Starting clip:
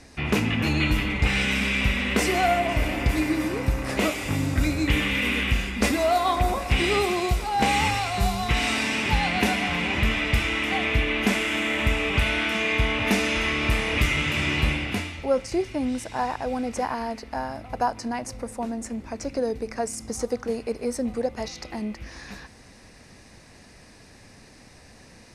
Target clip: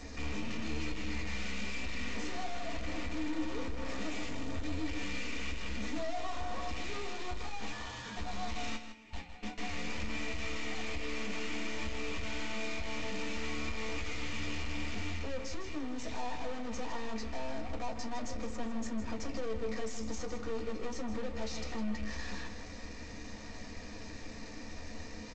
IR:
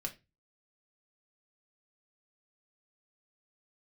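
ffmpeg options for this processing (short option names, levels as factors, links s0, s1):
-filter_complex "[0:a]asettb=1/sr,asplit=3[s0][s1][s2];[s0]atrim=end=8.764[s3];[s1]atrim=start=8.76:end=9.58,asetpts=PTS-STARTPTS,afade=t=in:d=0.004:c=qsin,afade=t=out:st=0.816:d=0.004:c=qsin,agate=range=0.0158:threshold=0.126:ratio=16:detection=peak[s4];[s2]atrim=start=9.576[s5];[s3][s4]acrossfade=d=0.004:c1=hsin:c2=qsin[s6];[s6][s5]acrossfade=d=0.004:c1=qsin:c2=hsin,acompressor=threshold=0.0398:ratio=3,aeval=exprs='(tanh(158*val(0)+0.4)-tanh(0.4))/158':c=same,asettb=1/sr,asplit=3[s7][s8][s9];[s7]atrim=end=7.724[s10];[s8]atrim=start=7.72:end=8.17,asetpts=PTS-STARTPTS,afade=t=in:d=0.004:c=qsin,afade=t=out:st=0.446:d=0.004:c=qsin,aeval=exprs='val(0)*sin(2*PI*920*n/s)':c=same[s11];[s9]atrim=start=8.166[s12];[s10][s11]acrossfade=d=0.004:c1=hsin:c2=qsin[s13];[s13][s12]acrossfade=d=0.004:c1=qsin:c2=hsin,asplit=2[s14][s15];[s15]adelay=157.4,volume=0.355,highshelf=f=4000:g=-3.54[s16];[s14][s16]amix=inputs=2:normalize=0[s17];[1:a]atrim=start_sample=2205,asetrate=70560,aresample=44100[s18];[s17][s18]afir=irnorm=-1:irlink=0,volume=2.66" -ar 16000 -c:a g722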